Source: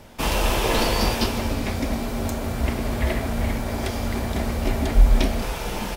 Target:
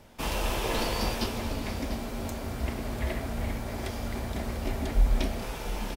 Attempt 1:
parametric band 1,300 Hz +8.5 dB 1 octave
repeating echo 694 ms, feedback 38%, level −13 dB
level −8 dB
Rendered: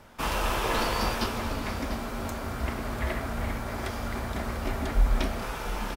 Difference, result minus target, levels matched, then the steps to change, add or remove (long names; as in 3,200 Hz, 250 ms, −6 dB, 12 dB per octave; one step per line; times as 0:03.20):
1,000 Hz band +3.5 dB
remove: parametric band 1,300 Hz +8.5 dB 1 octave